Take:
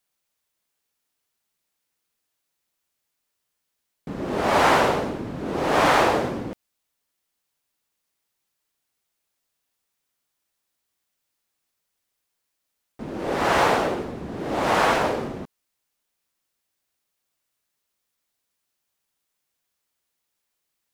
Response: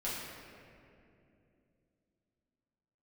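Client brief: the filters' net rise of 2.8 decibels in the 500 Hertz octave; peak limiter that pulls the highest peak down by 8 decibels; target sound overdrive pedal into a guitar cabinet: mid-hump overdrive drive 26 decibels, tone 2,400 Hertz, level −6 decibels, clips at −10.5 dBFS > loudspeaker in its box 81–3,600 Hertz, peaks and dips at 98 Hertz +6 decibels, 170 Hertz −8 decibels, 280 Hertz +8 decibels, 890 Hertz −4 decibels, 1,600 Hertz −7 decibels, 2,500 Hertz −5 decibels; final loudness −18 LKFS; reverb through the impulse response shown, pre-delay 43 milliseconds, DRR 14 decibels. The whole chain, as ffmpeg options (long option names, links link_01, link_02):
-filter_complex "[0:a]equalizer=frequency=500:width_type=o:gain=3.5,alimiter=limit=-12dB:level=0:latency=1,asplit=2[link_01][link_02];[1:a]atrim=start_sample=2205,adelay=43[link_03];[link_02][link_03]afir=irnorm=-1:irlink=0,volume=-18dB[link_04];[link_01][link_04]amix=inputs=2:normalize=0,asplit=2[link_05][link_06];[link_06]highpass=frequency=720:poles=1,volume=26dB,asoftclip=type=tanh:threshold=-10.5dB[link_07];[link_05][link_07]amix=inputs=2:normalize=0,lowpass=frequency=2400:poles=1,volume=-6dB,highpass=81,equalizer=frequency=98:width_type=q:width=4:gain=6,equalizer=frequency=170:width_type=q:width=4:gain=-8,equalizer=frequency=280:width_type=q:width=4:gain=8,equalizer=frequency=890:width_type=q:width=4:gain=-4,equalizer=frequency=1600:width_type=q:width=4:gain=-7,equalizer=frequency=2500:width_type=q:width=4:gain=-5,lowpass=frequency=3600:width=0.5412,lowpass=frequency=3600:width=1.3066,volume=1.5dB"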